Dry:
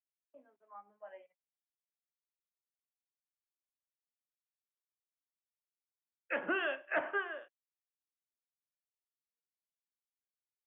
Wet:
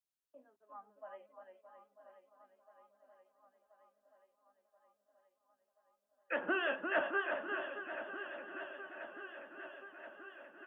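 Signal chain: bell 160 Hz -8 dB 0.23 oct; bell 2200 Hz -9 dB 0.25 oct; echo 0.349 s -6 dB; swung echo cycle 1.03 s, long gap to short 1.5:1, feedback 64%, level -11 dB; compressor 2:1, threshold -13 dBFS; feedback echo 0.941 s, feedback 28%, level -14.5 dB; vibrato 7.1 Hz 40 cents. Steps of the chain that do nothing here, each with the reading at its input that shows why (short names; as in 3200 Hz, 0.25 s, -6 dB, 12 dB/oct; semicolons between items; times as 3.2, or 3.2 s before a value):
compressor, threshold -13 dBFS: input peak -21.0 dBFS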